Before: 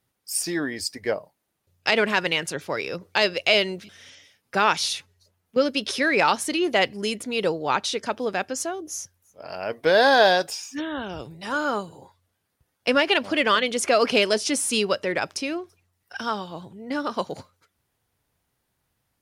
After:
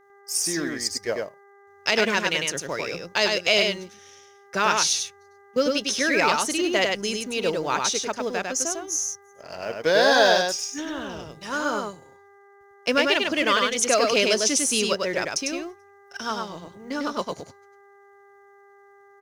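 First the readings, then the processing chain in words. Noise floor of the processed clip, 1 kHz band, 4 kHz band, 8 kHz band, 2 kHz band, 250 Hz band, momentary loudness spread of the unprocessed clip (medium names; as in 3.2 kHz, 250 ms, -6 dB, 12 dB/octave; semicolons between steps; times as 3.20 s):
-53 dBFS, -1.5 dB, +1.0 dB, +6.5 dB, 0.0 dB, -0.5 dB, 13 LU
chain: companding laws mixed up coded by A; peaking EQ 6.2 kHz +12.5 dB 0.37 oct; band-stop 790 Hz, Q 12; mains buzz 400 Hz, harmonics 5, -56 dBFS -4 dB/octave; delay 100 ms -3.5 dB; trim -1.5 dB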